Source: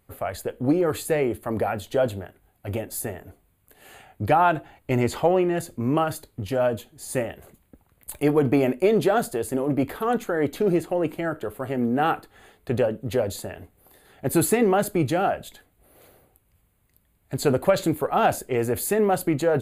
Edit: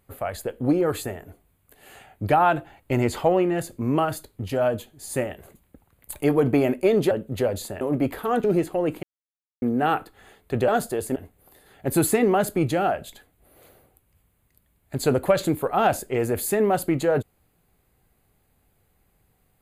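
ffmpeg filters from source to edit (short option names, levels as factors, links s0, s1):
-filter_complex "[0:a]asplit=9[s0][s1][s2][s3][s4][s5][s6][s7][s8];[s0]atrim=end=1.042[s9];[s1]atrim=start=3.028:end=9.102[s10];[s2]atrim=start=12.848:end=13.552[s11];[s3]atrim=start=9.578:end=10.212[s12];[s4]atrim=start=10.608:end=11.2,asetpts=PTS-STARTPTS,afade=t=out:st=0.588:d=0.004:c=hsin[s13];[s5]atrim=start=11.2:end=11.79,asetpts=PTS-STARTPTS,volume=0[s14];[s6]atrim=start=11.79:end=12.852,asetpts=PTS-STARTPTS,afade=t=in:d=0.004:c=hsin[s15];[s7]atrim=start=9.098:end=9.582[s16];[s8]atrim=start=13.548[s17];[s9][s10]acrossfade=d=0.004:c1=hsin:c2=hsin[s18];[s18][s11]acrossfade=d=0.004:c1=hsin:c2=hsin[s19];[s19][s12]acrossfade=d=0.004:c1=hsin:c2=hsin[s20];[s13][s14][s15]concat=n=3:v=0:a=1[s21];[s20][s21]acrossfade=d=0.004:c1=hsin:c2=hsin[s22];[s22][s16]acrossfade=d=0.004:c1=hsin:c2=hsin[s23];[s23][s17]acrossfade=d=0.004:c1=hsin:c2=hsin"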